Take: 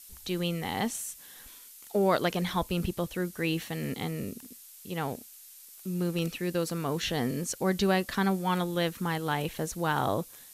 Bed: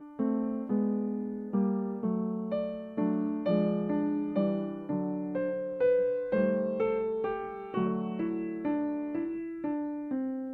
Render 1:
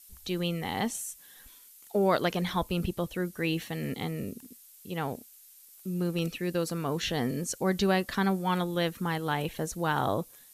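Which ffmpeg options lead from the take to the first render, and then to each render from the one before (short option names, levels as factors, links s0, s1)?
-af "afftdn=nr=6:nf=-51"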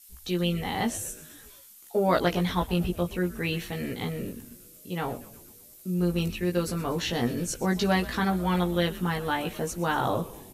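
-filter_complex "[0:a]asplit=2[s0][s1];[s1]adelay=17,volume=0.75[s2];[s0][s2]amix=inputs=2:normalize=0,asplit=7[s3][s4][s5][s6][s7][s8][s9];[s4]adelay=121,afreqshift=-130,volume=0.141[s10];[s5]adelay=242,afreqshift=-260,volume=0.0902[s11];[s6]adelay=363,afreqshift=-390,volume=0.0575[s12];[s7]adelay=484,afreqshift=-520,volume=0.0372[s13];[s8]adelay=605,afreqshift=-650,volume=0.0237[s14];[s9]adelay=726,afreqshift=-780,volume=0.0151[s15];[s3][s10][s11][s12][s13][s14][s15]amix=inputs=7:normalize=0"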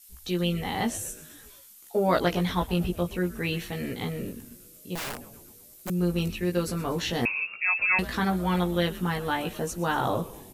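-filter_complex "[0:a]asettb=1/sr,asplit=3[s0][s1][s2];[s0]atrim=end=4.954[s3];[s1]atrim=start=4.95:end=5.9,asetpts=PTS-STARTPTS,afade=t=in:d=0.004:c=qsin,afade=t=out:st=0.946:d=0.004:c=qsin,aeval=exprs='(mod(26.6*val(0)+1,2)-1)/26.6':c=same[s4];[s2]atrim=start=5.896[s5];[s3][s4]acrossfade=d=0.004:c1=hsin:c2=qsin[s6];[s6][s5]acrossfade=d=0.004:c1=qsin:c2=hsin,asettb=1/sr,asplit=3[s7][s8][s9];[s7]atrim=end=7.254[s10];[s8]atrim=start=7.25:end=7.99,asetpts=PTS-STARTPTS,afade=t=in:d=0.004:c=qsin,afade=t=out:st=0.736:d=0.004:c=qsin,lowpass=f=2400:t=q:w=0.5098,lowpass=f=2400:t=q:w=0.6013,lowpass=f=2400:t=q:w=0.9,lowpass=f=2400:t=q:w=2.563,afreqshift=-2800[s11];[s9]atrim=start=7.986[s12];[s10][s11]acrossfade=d=0.004:c1=hsin:c2=qsin[s13];[s13][s12]acrossfade=d=0.004:c1=qsin:c2=hsin,asettb=1/sr,asplit=3[s14][s15][s16];[s14]atrim=end=9.464[s17];[s15]atrim=start=9.46:end=9.94,asetpts=PTS-STARTPTS,afade=t=in:d=0.004:c=qsin,afade=t=out:st=0.476:d=0.004:c=qsin,bandreject=f=2200:w=12[s18];[s16]atrim=start=9.936[s19];[s17][s18]acrossfade=d=0.004:c1=hsin:c2=qsin[s20];[s20][s19]acrossfade=d=0.004:c1=qsin:c2=hsin"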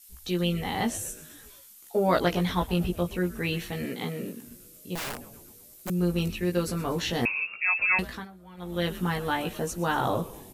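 -filter_complex "[0:a]asettb=1/sr,asplit=3[s0][s1][s2];[s0]atrim=end=3.854[s3];[s1]atrim=start=3.85:end=4.46,asetpts=PTS-STARTPTS,afade=t=in:d=0.004:c=qsin,afade=t=out:st=0.606:d=0.004:c=qsin,highpass=f=150:w=0.5412,highpass=f=150:w=1.3066[s4];[s2]atrim=start=4.456[s5];[s3][s4]acrossfade=d=0.004:c1=hsin:c2=qsin[s6];[s6][s5]acrossfade=d=0.004:c1=qsin:c2=hsin,asplit=3[s7][s8][s9];[s7]atrim=end=8.28,asetpts=PTS-STARTPTS,afade=t=out:st=7.93:d=0.35:silence=0.0749894[s10];[s8]atrim=start=8.28:end=8.57,asetpts=PTS-STARTPTS,volume=0.075[s11];[s9]atrim=start=8.57,asetpts=PTS-STARTPTS,afade=t=in:d=0.35:silence=0.0749894[s12];[s10][s11][s12]concat=n=3:v=0:a=1"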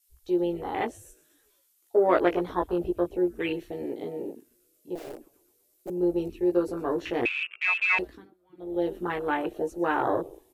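-af "afwtdn=0.0251,lowshelf=f=260:t=q:w=3:g=-8"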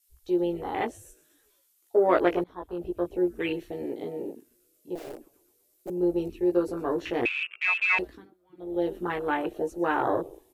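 -filter_complex "[0:a]asplit=2[s0][s1];[s0]atrim=end=2.44,asetpts=PTS-STARTPTS,afade=t=out:st=2.436:d=0.004:c=hsin:silence=0.0794328[s2];[s1]atrim=start=2.44,asetpts=PTS-STARTPTS,afade=t=in:d=0.78:silence=0.0794328[s3];[s2][s3]concat=n=2:v=0:a=1"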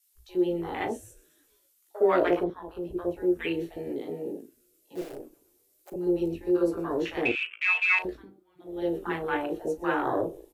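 -filter_complex "[0:a]asplit=2[s0][s1];[s1]adelay=36,volume=0.237[s2];[s0][s2]amix=inputs=2:normalize=0,acrossover=split=790[s3][s4];[s3]adelay=60[s5];[s5][s4]amix=inputs=2:normalize=0"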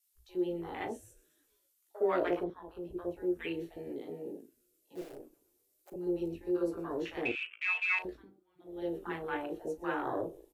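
-af "volume=0.422"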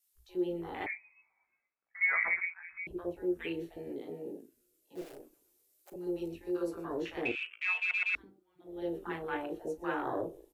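-filter_complex "[0:a]asettb=1/sr,asplit=3[s0][s1][s2];[s0]atrim=end=0.864[s3];[s1]atrim=start=0.86:end=2.87,asetpts=PTS-STARTPTS,afade=t=in:d=0.004:c=qsin,afade=t=out:st=2.006:d=0.004:c=qsin,lowpass=f=2200:t=q:w=0.5098,lowpass=f=2200:t=q:w=0.6013,lowpass=f=2200:t=q:w=0.9,lowpass=f=2200:t=q:w=2.563,afreqshift=-2600[s4];[s2]atrim=start=2.866[s5];[s3][s4]acrossfade=d=0.004:c1=hsin:c2=qsin[s6];[s6][s5]acrossfade=d=0.004:c1=qsin:c2=hsin,asettb=1/sr,asplit=3[s7][s8][s9];[s7]atrim=end=5.064[s10];[s8]atrim=start=5.06:end=6.85,asetpts=PTS-STARTPTS,afade=t=in:d=0.004:c=qsin,afade=t=out:st=1.786:d=0.004:c=qsin,tiltshelf=f=900:g=-3.5[s11];[s9]atrim=start=6.846[s12];[s10][s11]acrossfade=d=0.004:c1=hsin:c2=qsin[s13];[s13][s12]acrossfade=d=0.004:c1=qsin:c2=hsin,asplit=4[s14][s15][s16][s17];[s14]atrim=end=7.912[s18];[s15]atrim=start=7.788:end=7.912[s19];[s16]atrim=start=7.788:end=7.912[s20];[s17]atrim=start=8.148[s21];[s18][s19]acrossfade=d=0.004:c1=hsin:c2=hsin[s22];[s22][s20]acrossfade=d=0.004:c1=hsin:c2=hsin[s23];[s23][s21]acrossfade=d=0.004:c1=hsin:c2=hsin"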